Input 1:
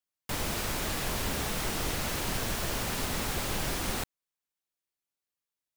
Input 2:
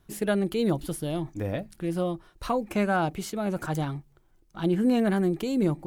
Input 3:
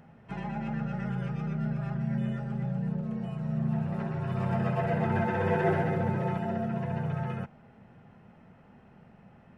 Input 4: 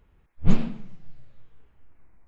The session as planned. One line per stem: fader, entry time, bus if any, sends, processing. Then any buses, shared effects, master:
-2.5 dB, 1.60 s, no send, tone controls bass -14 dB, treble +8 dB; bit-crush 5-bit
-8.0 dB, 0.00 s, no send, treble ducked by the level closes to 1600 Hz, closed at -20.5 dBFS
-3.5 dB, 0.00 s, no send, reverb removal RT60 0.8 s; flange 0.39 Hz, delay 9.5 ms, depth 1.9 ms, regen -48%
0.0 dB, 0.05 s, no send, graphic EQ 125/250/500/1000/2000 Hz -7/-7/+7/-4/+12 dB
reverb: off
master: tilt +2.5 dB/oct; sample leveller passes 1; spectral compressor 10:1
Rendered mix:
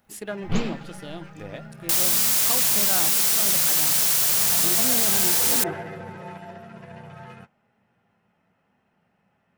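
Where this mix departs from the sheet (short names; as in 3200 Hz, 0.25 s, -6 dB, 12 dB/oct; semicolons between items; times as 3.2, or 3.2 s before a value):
stem 3: missing reverb removal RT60 0.8 s; stem 4: missing graphic EQ 125/250/500/1000/2000 Hz -7/-7/+7/-4/+12 dB; master: missing spectral compressor 10:1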